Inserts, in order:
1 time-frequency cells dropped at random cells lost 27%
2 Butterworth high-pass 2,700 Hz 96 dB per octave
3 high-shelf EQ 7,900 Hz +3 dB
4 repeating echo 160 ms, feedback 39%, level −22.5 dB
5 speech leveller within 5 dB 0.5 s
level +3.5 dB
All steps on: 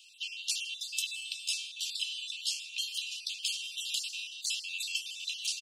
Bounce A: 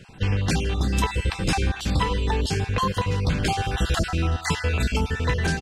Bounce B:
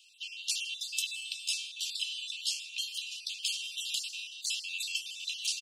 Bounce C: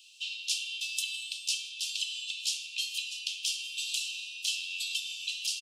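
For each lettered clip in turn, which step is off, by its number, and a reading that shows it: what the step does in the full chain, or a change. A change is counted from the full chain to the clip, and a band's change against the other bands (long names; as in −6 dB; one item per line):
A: 2, change in crest factor −9.0 dB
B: 5, change in momentary loudness spread +1 LU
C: 1, change in integrated loudness +1.5 LU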